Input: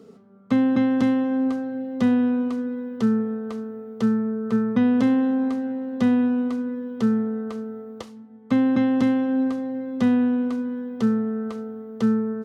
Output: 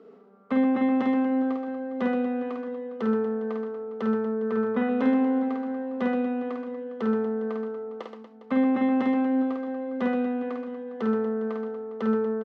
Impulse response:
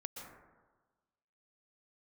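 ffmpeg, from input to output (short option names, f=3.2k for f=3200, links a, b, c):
-af "highpass=360,lowpass=2.2k,aecho=1:1:50|125|237.5|406.2|659.4:0.631|0.398|0.251|0.158|0.1"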